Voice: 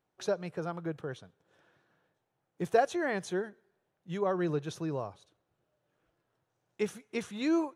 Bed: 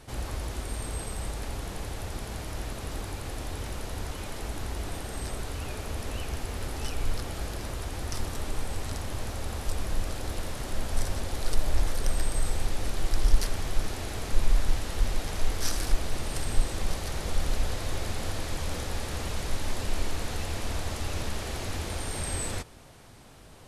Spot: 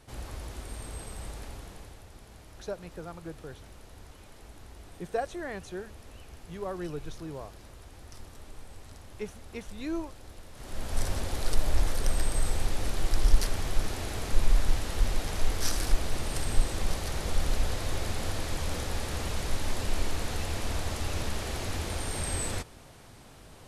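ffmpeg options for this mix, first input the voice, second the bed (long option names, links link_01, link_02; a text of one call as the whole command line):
ffmpeg -i stem1.wav -i stem2.wav -filter_complex "[0:a]adelay=2400,volume=-5.5dB[link_01];[1:a]volume=8.5dB,afade=type=out:start_time=1.36:duration=0.68:silence=0.375837,afade=type=in:start_time=10.52:duration=0.55:silence=0.188365[link_02];[link_01][link_02]amix=inputs=2:normalize=0" out.wav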